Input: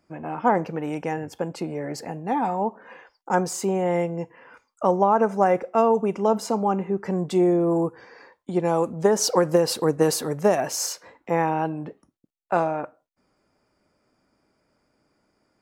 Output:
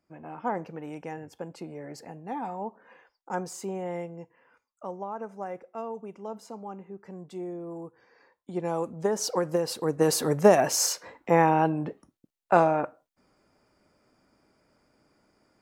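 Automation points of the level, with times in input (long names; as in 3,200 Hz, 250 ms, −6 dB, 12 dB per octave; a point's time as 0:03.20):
0:03.78 −10 dB
0:04.94 −17 dB
0:07.83 −17 dB
0:08.64 −7.5 dB
0:09.80 −7.5 dB
0:10.30 +2 dB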